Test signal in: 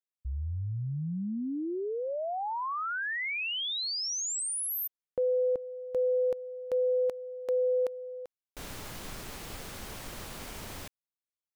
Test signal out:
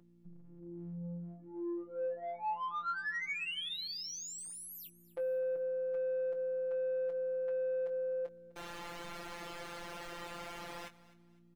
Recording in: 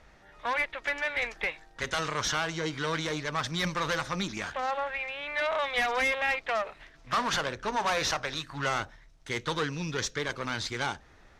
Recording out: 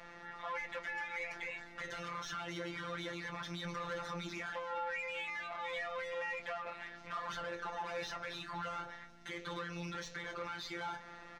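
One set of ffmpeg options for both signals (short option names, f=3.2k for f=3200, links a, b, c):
-filter_complex "[0:a]acrossover=split=120[a][b];[b]acompressor=threshold=-40dB:ratio=10:attack=2.6:release=55:knee=6:detection=rms[c];[a][c]amix=inputs=2:normalize=0,aeval=exprs='0.0376*sin(PI/2*1.58*val(0)/0.0376)':c=same,aeval=exprs='val(0)+0.00447*(sin(2*PI*60*n/s)+sin(2*PI*2*60*n/s)/2+sin(2*PI*3*60*n/s)/3+sin(2*PI*4*60*n/s)/4+sin(2*PI*5*60*n/s)/5)':c=same,afftfilt=real='hypot(re,im)*cos(PI*b)':imag='0':win_size=1024:overlap=0.75,asplit=2[d][e];[e]highpass=f=720:p=1,volume=19dB,asoftclip=type=tanh:threshold=-19dB[f];[d][f]amix=inputs=2:normalize=0,lowpass=f=2.3k:p=1,volume=-6dB,asplit=2[g][h];[h]adelay=21,volume=-9dB[i];[g][i]amix=inputs=2:normalize=0,asplit=2[j][k];[k]aecho=0:1:254|508|762:0.112|0.0337|0.0101[l];[j][l]amix=inputs=2:normalize=0,volume=-8.5dB"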